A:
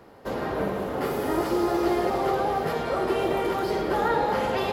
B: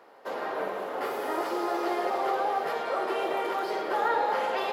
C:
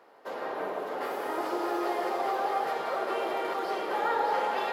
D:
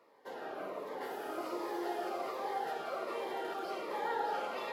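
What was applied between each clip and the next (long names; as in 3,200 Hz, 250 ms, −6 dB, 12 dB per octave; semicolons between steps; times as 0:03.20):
high-pass filter 540 Hz 12 dB per octave; high-shelf EQ 4,100 Hz −7 dB
echo with a time of its own for lows and highs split 1,300 Hz, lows 146 ms, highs 605 ms, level −4 dB; level −3 dB
phaser whose notches keep moving one way falling 1.3 Hz; level −5.5 dB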